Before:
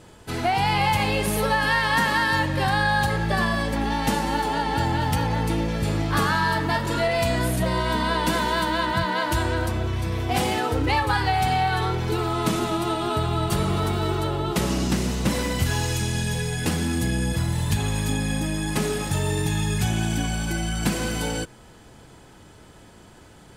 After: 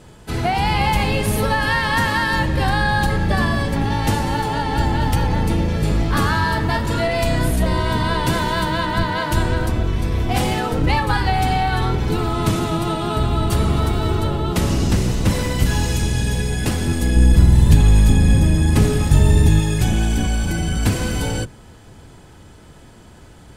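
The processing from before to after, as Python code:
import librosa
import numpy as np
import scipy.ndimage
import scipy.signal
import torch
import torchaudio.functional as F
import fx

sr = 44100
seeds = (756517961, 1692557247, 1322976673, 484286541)

y = fx.octave_divider(x, sr, octaves=1, level_db=3.0)
y = fx.low_shelf(y, sr, hz=220.0, db=8.0, at=(17.16, 19.6))
y = y * 10.0 ** (2.0 / 20.0)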